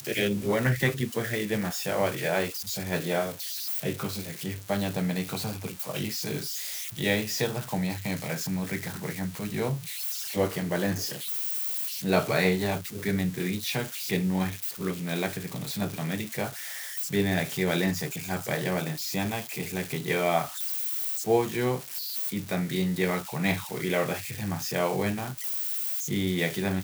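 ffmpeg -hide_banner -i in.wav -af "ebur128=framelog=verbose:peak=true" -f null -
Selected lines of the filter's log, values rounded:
Integrated loudness:
  I:         -28.9 LUFS
  Threshold: -38.9 LUFS
Loudness range:
  LRA:         3.2 LU
  Threshold: -49.0 LUFS
  LRA low:   -30.7 LUFS
  LRA high:  -27.5 LUFS
True peak:
  Peak:      -10.4 dBFS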